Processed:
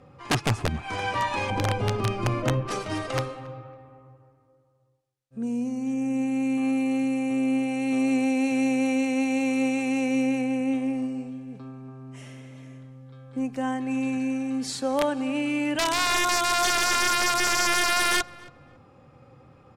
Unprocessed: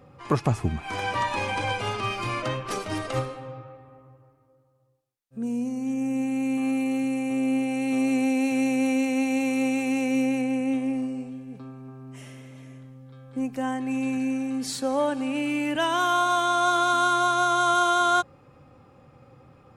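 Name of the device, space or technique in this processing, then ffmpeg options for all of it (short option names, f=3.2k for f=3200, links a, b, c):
overflowing digital effects unit: -filter_complex "[0:a]asettb=1/sr,asplit=3[a][b][c];[a]atrim=end=1.504[d];[b]atrim=start=1.5:end=2.68,asetpts=PTS-STARTPTS,afade=t=in:d=0.004:c=qsin,afade=t=out:st=1.176:d=0.004:c=qsin,tiltshelf=f=740:g=9[e];[c]atrim=start=2.676[f];[d][e]acrossfade=d=0.004:c1=hsin:c2=qsin[g];[g][f]acrossfade=d=0.004:c1=qsin:c2=hsin,aeval=exprs='(mod(5.96*val(0)+1,2)-1)/5.96':c=same,lowpass=9.6k,asplit=2[h][i];[i]adelay=276,lowpass=f=2.2k:p=1,volume=-21dB,asplit=2[j][k];[k]adelay=276,lowpass=f=2.2k:p=1,volume=0.29[l];[h][j][l]amix=inputs=3:normalize=0"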